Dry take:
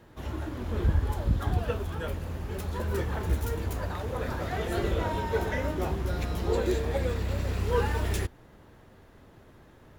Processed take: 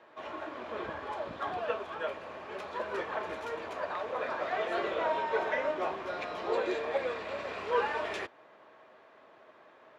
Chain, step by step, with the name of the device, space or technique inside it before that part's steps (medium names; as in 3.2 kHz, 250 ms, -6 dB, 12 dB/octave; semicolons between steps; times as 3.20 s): tin-can telephone (band-pass 540–3200 Hz; small resonant body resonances 630/1100/2400 Hz, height 8 dB); trim +1.5 dB